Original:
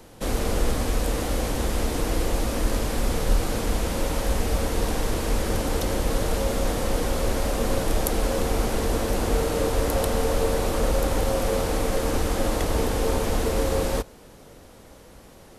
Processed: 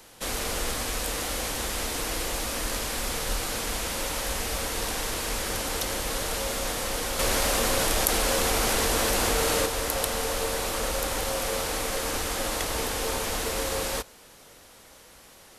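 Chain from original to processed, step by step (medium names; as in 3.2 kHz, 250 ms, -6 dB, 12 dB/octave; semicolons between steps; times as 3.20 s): tilt shelf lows -7.5 dB, about 770 Hz; 7.19–9.66 s: level flattener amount 70%; trim -3.5 dB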